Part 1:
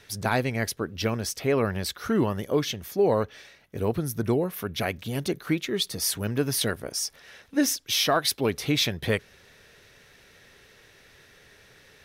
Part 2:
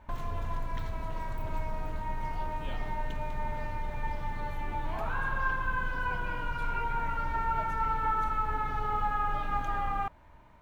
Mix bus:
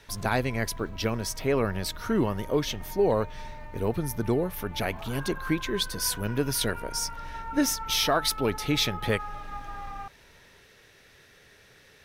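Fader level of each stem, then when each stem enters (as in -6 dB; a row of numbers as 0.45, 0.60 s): -1.5, -7.0 dB; 0.00, 0.00 s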